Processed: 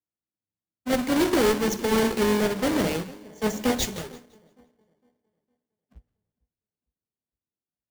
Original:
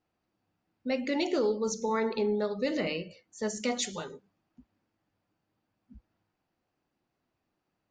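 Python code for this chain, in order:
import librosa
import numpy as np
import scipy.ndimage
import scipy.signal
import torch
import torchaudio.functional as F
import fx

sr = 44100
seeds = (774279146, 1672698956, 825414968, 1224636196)

p1 = fx.halfwave_hold(x, sr)
p2 = scipy.signal.sosfilt(scipy.signal.butter(2, 52.0, 'highpass', fs=sr, output='sos'), p1)
p3 = p2 + fx.echo_split(p2, sr, split_hz=930.0, low_ms=457, high_ms=170, feedback_pct=52, wet_db=-15.5, dry=0)
p4 = 10.0 ** (-17.0 / 20.0) * np.tanh(p3 / 10.0 ** (-17.0 / 20.0))
p5 = fx.sample_hold(p4, sr, seeds[0], rate_hz=1300.0, jitter_pct=0)
p6 = p4 + (p5 * librosa.db_to_amplitude(-3.0))
y = fx.band_widen(p6, sr, depth_pct=70)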